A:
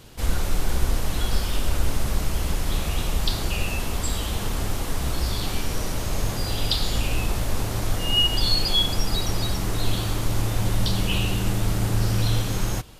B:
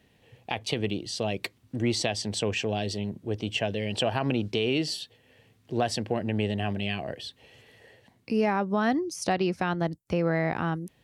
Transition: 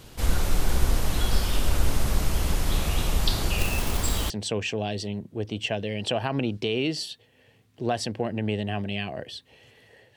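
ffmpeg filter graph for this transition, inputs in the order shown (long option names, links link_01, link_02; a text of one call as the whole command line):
ffmpeg -i cue0.wav -i cue1.wav -filter_complex "[0:a]asettb=1/sr,asplit=3[link_01][link_02][link_03];[link_01]atrim=end=3.584[link_04];[link_02]atrim=start=3.58:end=4.3,asetpts=PTS-STARTPTS,afade=type=in:duration=0.004:curve=qsin,afade=type=out:start_time=0.716:duration=0.004:curve=qsin,acrusher=bits=3:mode=log:mix=0:aa=0.000001[link_05];[link_03]atrim=start=4.296[link_06];[link_04][link_05]acrossfade=duration=0.004:curve1=hsin:curve2=qsin[link_07];[link_07][link_06]acrossfade=duration=0.004:curve1=qsin:curve2=hsin,apad=whole_dur=10.16,atrim=end=10.16,atrim=end=4.302[link_08];[1:a]atrim=start=2.208:end=8.07[link_09];[link_08][link_09]acrossfade=duration=0.004:curve1=hsin:curve2=hsin" out.wav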